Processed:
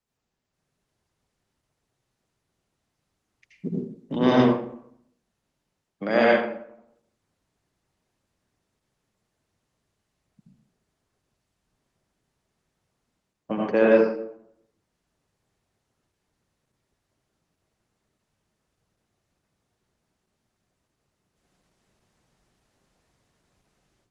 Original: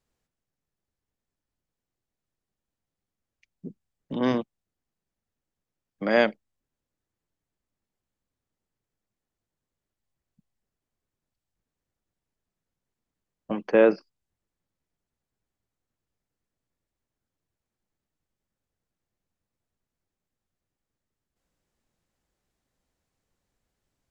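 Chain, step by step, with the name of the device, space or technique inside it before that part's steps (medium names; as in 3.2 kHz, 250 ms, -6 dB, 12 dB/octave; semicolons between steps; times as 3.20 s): far-field microphone of a smart speaker (reverberation RT60 0.65 s, pre-delay 72 ms, DRR -4.5 dB; high-pass 83 Hz 6 dB/octave; level rider gain up to 13.5 dB; trim -5.5 dB; Opus 16 kbps 48 kHz)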